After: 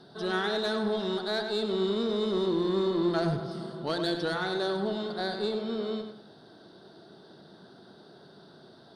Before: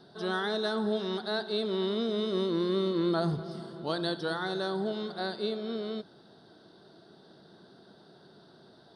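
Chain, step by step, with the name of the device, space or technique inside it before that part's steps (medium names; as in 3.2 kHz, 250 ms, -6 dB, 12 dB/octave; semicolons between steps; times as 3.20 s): rockabilly slapback (valve stage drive 24 dB, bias 0.25; tape echo 100 ms, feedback 34%, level -6 dB, low-pass 3.8 kHz); trim +3 dB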